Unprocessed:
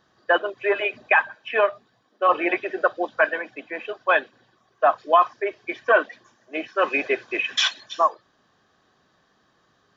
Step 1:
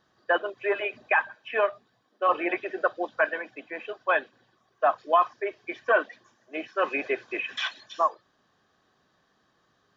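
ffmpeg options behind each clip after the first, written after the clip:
-filter_complex "[0:a]acrossover=split=2900[a][b];[b]acompressor=threshold=-38dB:ratio=4:attack=1:release=60[c];[a][c]amix=inputs=2:normalize=0,volume=-4.5dB"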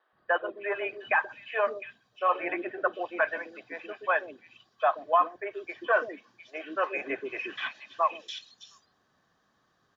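-filter_complex "[0:a]acrossover=split=390|3200[a][b][c];[a]adelay=130[d];[c]adelay=710[e];[d][b][e]amix=inputs=3:normalize=0,volume=-1.5dB"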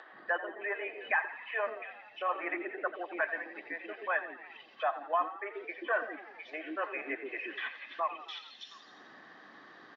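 -filter_complex "[0:a]highpass=f=170:w=0.5412,highpass=f=170:w=1.3066,equalizer=f=170:t=q:w=4:g=-6,equalizer=f=310:t=q:w=4:g=6,equalizer=f=790:t=q:w=4:g=3,equalizer=f=1.9k:t=q:w=4:g=10,lowpass=f=4.5k:w=0.5412,lowpass=f=4.5k:w=1.3066,asplit=6[a][b][c][d][e][f];[b]adelay=86,afreqshift=49,volume=-13dB[g];[c]adelay=172,afreqshift=98,volume=-18.7dB[h];[d]adelay=258,afreqshift=147,volume=-24.4dB[i];[e]adelay=344,afreqshift=196,volume=-30dB[j];[f]adelay=430,afreqshift=245,volume=-35.7dB[k];[a][g][h][i][j][k]amix=inputs=6:normalize=0,acompressor=mode=upward:threshold=-26dB:ratio=2.5,volume=-8.5dB"

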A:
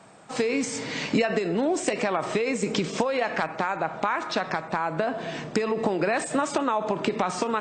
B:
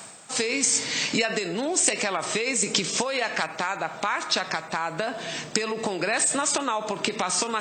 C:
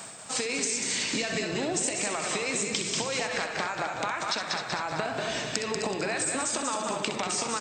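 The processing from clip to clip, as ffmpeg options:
-af "areverse,acompressor=mode=upward:threshold=-31dB:ratio=2.5,areverse,crystalizer=i=7:c=0,volume=-4.5dB"
-filter_complex "[0:a]asplit=2[a][b];[b]asplit=4[c][d][e][f];[c]adelay=188,afreqshift=-39,volume=-6dB[g];[d]adelay=376,afreqshift=-78,volume=-15.1dB[h];[e]adelay=564,afreqshift=-117,volume=-24.2dB[i];[f]adelay=752,afreqshift=-156,volume=-33.4dB[j];[g][h][i][j]amix=inputs=4:normalize=0[k];[a][k]amix=inputs=2:normalize=0,acompressor=threshold=-27dB:ratio=6,asplit=2[l][m];[m]aecho=0:1:64.14|262.4:0.355|0.316[n];[l][n]amix=inputs=2:normalize=0"

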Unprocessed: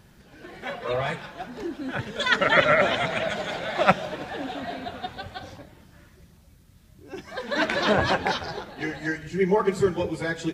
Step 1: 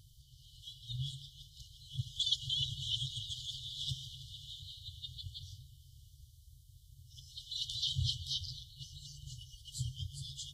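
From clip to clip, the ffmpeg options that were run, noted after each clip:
-af "afftfilt=real='re*(1-between(b*sr/4096,140,2900))':imag='im*(1-between(b*sr/4096,140,2900))':win_size=4096:overlap=0.75,volume=-3dB"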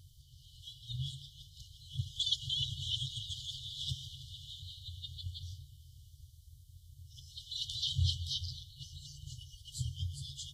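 -af "equalizer=f=87:w=7:g=9"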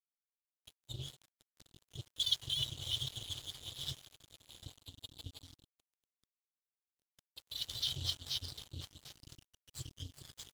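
-filter_complex "[0:a]aecho=1:1:748:0.251,acrossover=split=1200[a][b];[a]alimiter=level_in=10dB:limit=-24dB:level=0:latency=1:release=498,volume=-10dB[c];[c][b]amix=inputs=2:normalize=0,aeval=exprs='sgn(val(0))*max(abs(val(0))-0.00631,0)':c=same,volume=1.5dB"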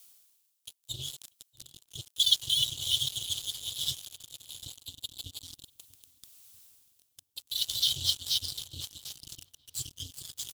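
-filter_complex "[0:a]areverse,acompressor=mode=upward:threshold=-48dB:ratio=2.5,areverse,aexciter=amount=2.3:drive=8.4:freq=2.8k,asplit=2[a][b];[b]adelay=640,lowpass=f=1.8k:p=1,volume=-21dB,asplit=2[c][d];[d]adelay=640,lowpass=f=1.8k:p=1,volume=0.52,asplit=2[e][f];[f]adelay=640,lowpass=f=1.8k:p=1,volume=0.52,asplit=2[g][h];[h]adelay=640,lowpass=f=1.8k:p=1,volume=0.52[i];[a][c][e][g][i]amix=inputs=5:normalize=0"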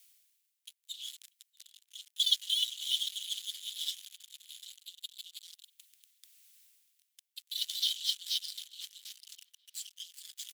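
-af "highpass=f=2k:t=q:w=2.3,volume=-6.5dB"

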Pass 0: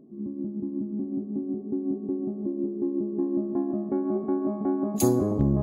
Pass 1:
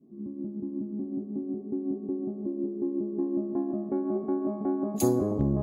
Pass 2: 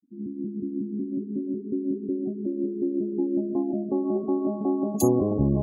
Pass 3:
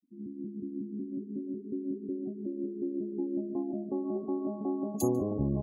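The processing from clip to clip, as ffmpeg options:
-af "adynamicequalizer=threshold=0.02:dfrequency=520:dqfactor=0.84:tfrequency=520:tqfactor=0.84:attack=5:release=100:ratio=0.375:range=1.5:mode=boostabove:tftype=bell,volume=-4dB"
-af "afftfilt=real='re*gte(hypot(re,im),0.0158)':imag='im*gte(hypot(re,im),0.0158)':win_size=1024:overlap=0.75,volume=3.5dB"
-af "aecho=1:1:145:0.0668,volume=-7.5dB"

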